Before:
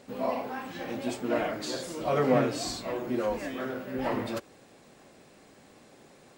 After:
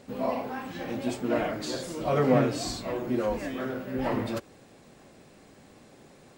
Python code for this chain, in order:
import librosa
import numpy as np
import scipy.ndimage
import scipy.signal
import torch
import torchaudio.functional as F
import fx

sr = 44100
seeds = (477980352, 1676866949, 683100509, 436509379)

y = fx.low_shelf(x, sr, hz=200.0, db=7.0)